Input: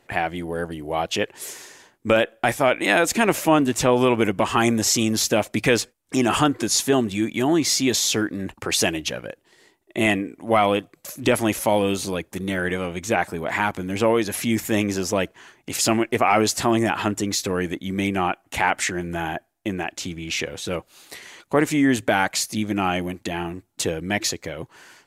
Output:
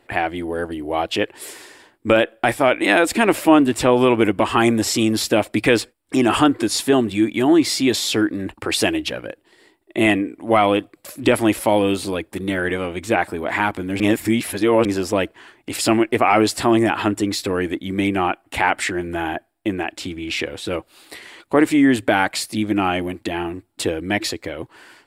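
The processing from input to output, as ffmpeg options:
ffmpeg -i in.wav -filter_complex "[0:a]asplit=3[link_01][link_02][link_03];[link_01]atrim=end=14.002[link_04];[link_02]atrim=start=13.998:end=14.852,asetpts=PTS-STARTPTS,areverse[link_05];[link_03]atrim=start=14.848[link_06];[link_04][link_05]acrossfade=duration=0.004:curve1=hsin:curve2=hsin[link_07];[link_07][link_06]acrossfade=duration=0.004:curve1=hsin:curve2=hsin,equalizer=frequency=160:width_type=o:width=0.33:gain=-9,equalizer=frequency=315:width_type=o:width=0.33:gain=5,equalizer=frequency=6300:width_type=o:width=0.33:gain=-12,equalizer=frequency=12500:width_type=o:width=0.33:gain=-6,volume=2.5dB" out.wav

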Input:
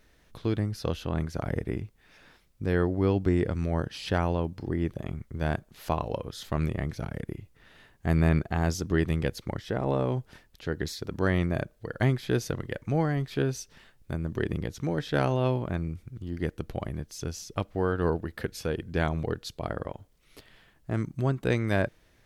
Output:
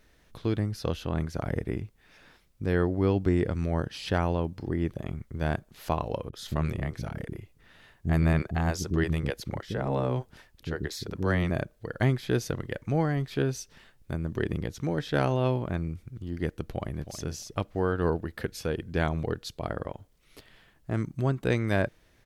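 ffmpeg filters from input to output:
ffmpeg -i in.wav -filter_complex "[0:a]asettb=1/sr,asplit=3[link_01][link_02][link_03];[link_01]atrim=end=6.294[link_04];[link_02]atrim=start=6.29:end=11.5,asetpts=PTS-STARTPTS,afade=type=in:duration=0.004:curve=qsin,afade=type=out:start_time=5.206:duration=0.004:curve=qsin,acrossover=split=350[link_05][link_06];[link_06]adelay=40[link_07];[link_05][link_07]amix=inputs=2:normalize=0,atrim=end_sample=229761[link_08];[link_03]atrim=start=11.496[link_09];[link_04][link_08]acrossfade=duration=0.004:curve1=hsin:curve2=qsin[link_10];[link_10][link_09]acrossfade=duration=0.004:curve1=qsin:curve2=hsin,asplit=2[link_11][link_12];[link_12]afade=type=in:start_time=16.61:duration=0.01,afade=type=out:start_time=17.15:duration=0.01,aecho=0:1:320|640:0.316228|0.0316228[link_13];[link_11][link_13]amix=inputs=2:normalize=0" out.wav

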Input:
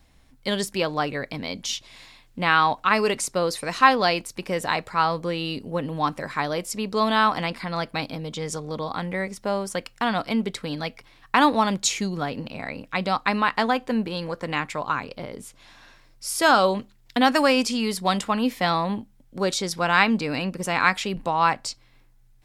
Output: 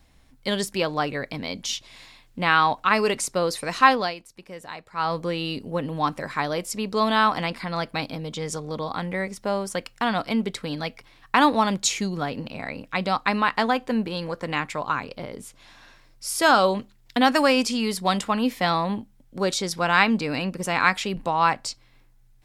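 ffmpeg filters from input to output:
ffmpeg -i in.wav -filter_complex "[0:a]asplit=3[link_01][link_02][link_03];[link_01]atrim=end=4.15,asetpts=PTS-STARTPTS,afade=type=out:start_time=3.92:duration=0.23:silence=0.223872[link_04];[link_02]atrim=start=4.15:end=4.91,asetpts=PTS-STARTPTS,volume=-13dB[link_05];[link_03]atrim=start=4.91,asetpts=PTS-STARTPTS,afade=type=in:duration=0.23:silence=0.223872[link_06];[link_04][link_05][link_06]concat=n=3:v=0:a=1" out.wav

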